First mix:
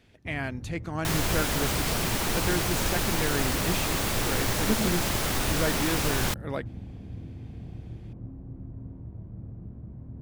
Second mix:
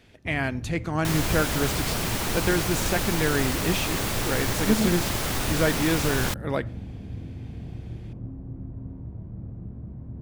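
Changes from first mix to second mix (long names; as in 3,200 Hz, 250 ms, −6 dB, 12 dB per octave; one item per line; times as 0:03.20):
speech +3.0 dB
reverb: on, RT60 0.55 s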